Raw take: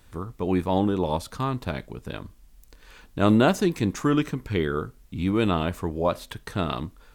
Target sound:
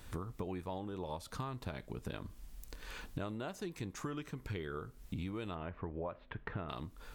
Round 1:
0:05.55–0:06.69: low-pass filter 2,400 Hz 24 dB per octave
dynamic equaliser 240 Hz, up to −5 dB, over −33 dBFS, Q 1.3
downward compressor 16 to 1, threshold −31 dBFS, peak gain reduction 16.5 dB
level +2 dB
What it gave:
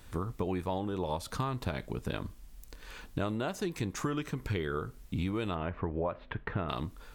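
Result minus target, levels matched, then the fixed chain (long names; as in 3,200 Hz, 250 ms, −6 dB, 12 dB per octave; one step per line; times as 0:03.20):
downward compressor: peak gain reduction −8 dB
0:05.55–0:06.69: low-pass filter 2,400 Hz 24 dB per octave
dynamic equaliser 240 Hz, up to −5 dB, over −33 dBFS, Q 1.3
downward compressor 16 to 1, threshold −39.5 dBFS, peak gain reduction 24.5 dB
level +2 dB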